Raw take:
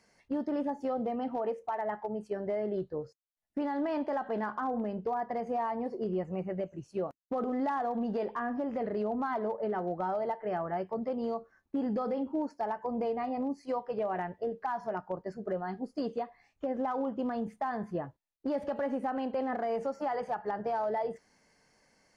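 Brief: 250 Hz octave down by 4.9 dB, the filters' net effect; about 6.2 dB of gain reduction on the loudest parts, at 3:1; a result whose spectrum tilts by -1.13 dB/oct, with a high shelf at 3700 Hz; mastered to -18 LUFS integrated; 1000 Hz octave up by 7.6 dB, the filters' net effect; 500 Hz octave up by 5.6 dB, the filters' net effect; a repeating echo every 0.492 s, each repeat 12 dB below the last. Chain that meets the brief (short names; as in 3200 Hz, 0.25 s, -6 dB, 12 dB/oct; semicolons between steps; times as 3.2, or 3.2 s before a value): bell 250 Hz -8 dB; bell 500 Hz +6 dB; bell 1000 Hz +8 dB; high shelf 3700 Hz +5 dB; compressor 3:1, threshold -30 dBFS; feedback echo 0.492 s, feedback 25%, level -12 dB; gain +15.5 dB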